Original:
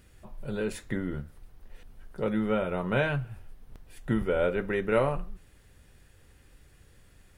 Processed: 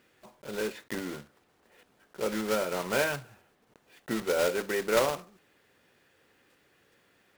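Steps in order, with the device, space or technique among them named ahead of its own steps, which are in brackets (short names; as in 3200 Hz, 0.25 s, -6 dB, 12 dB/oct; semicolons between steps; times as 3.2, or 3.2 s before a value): early digital voice recorder (BPF 290–4000 Hz; block floating point 3-bit)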